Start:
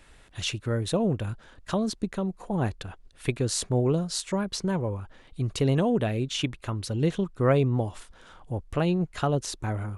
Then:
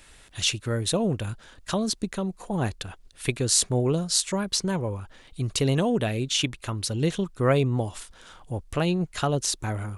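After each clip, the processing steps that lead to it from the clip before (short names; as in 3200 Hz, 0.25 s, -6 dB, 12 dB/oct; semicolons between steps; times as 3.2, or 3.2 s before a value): high shelf 2800 Hz +10 dB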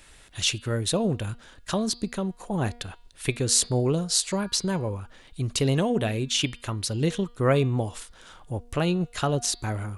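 de-hum 238.7 Hz, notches 21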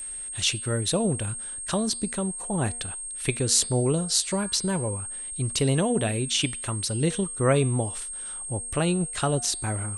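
whine 8500 Hz -33 dBFS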